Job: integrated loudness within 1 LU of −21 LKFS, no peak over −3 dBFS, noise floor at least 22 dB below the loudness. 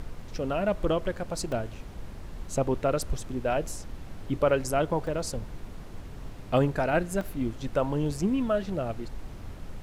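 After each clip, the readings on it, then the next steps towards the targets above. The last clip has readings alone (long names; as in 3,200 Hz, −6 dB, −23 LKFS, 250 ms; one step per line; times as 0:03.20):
number of dropouts 3; longest dropout 2.8 ms; background noise floor −43 dBFS; target noise floor −51 dBFS; integrated loudness −29.0 LKFS; sample peak −12.0 dBFS; target loudness −21.0 LKFS
→ repair the gap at 0:01.52/0:05.07/0:07.21, 2.8 ms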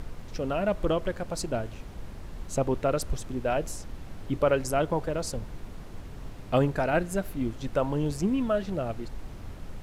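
number of dropouts 0; background noise floor −43 dBFS; target noise floor −51 dBFS
→ noise reduction from a noise print 8 dB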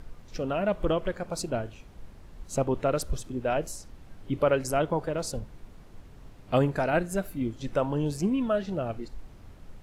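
background noise floor −50 dBFS; target noise floor −52 dBFS
→ noise reduction from a noise print 6 dB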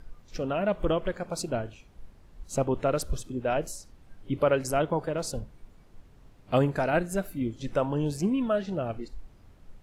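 background noise floor −56 dBFS; integrated loudness −29.0 LKFS; sample peak −12.5 dBFS; target loudness −21.0 LKFS
→ level +8 dB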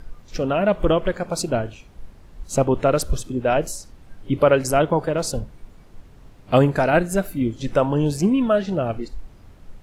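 integrated loudness −21.0 LKFS; sample peak −4.5 dBFS; background noise floor −48 dBFS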